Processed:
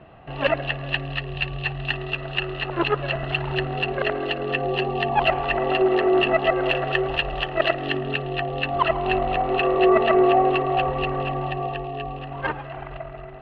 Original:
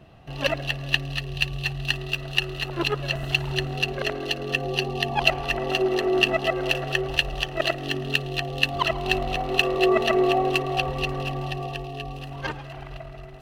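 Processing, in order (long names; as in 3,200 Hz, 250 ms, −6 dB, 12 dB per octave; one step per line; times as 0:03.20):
low-shelf EQ 93 Hz +6 dB
mid-hump overdrive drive 16 dB, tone 3,900 Hz, clips at −1.5 dBFS, from 0:06.66 tone 6,700 Hz, from 0:08.00 tone 2,400 Hz
high-frequency loss of the air 480 metres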